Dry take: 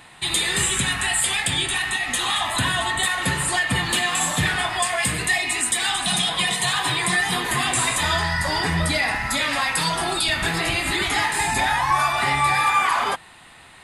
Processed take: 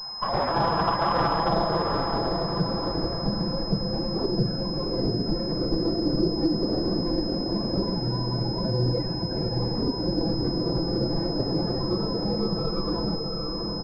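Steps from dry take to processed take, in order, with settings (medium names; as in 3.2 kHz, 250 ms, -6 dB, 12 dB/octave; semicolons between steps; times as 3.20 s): comb filter that takes the minimum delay 1.9 ms; level rider gain up to 4.5 dB; dynamic bell 350 Hz, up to +5 dB, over -46 dBFS, Q 6.9; de-hum 330.6 Hz, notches 3; formant-preserving pitch shift +7 st; comb 6 ms, depth 80%; decimation with a swept rate 8×, swing 100% 0.21 Hz; low-pass sweep 1 kHz -> 360 Hz, 1.32–2.06 s; on a send: echo that smears into a reverb 710 ms, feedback 41%, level -5.5 dB; on the sum: compression 1.5:1, threshold -29 dBFS, peak gain reduction 6.5 dB; class-D stage that switches slowly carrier 5.1 kHz; trim -1 dB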